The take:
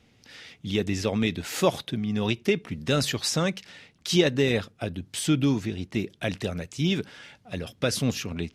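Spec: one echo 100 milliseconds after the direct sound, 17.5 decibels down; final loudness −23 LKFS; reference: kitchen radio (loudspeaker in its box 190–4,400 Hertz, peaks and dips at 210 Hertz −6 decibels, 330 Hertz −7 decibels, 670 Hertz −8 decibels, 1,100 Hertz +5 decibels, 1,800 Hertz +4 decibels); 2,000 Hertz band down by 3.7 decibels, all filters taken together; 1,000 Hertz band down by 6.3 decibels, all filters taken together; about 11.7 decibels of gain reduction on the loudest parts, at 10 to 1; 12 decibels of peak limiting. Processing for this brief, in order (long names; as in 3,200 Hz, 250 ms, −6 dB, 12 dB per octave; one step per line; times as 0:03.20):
parametric band 1,000 Hz −8 dB
parametric band 2,000 Hz −5 dB
downward compressor 10 to 1, threshold −27 dBFS
brickwall limiter −28 dBFS
loudspeaker in its box 190–4,400 Hz, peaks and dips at 210 Hz −6 dB, 330 Hz −7 dB, 670 Hz −8 dB, 1,100 Hz +5 dB, 1,800 Hz +4 dB
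single-tap delay 100 ms −17.5 dB
level +20 dB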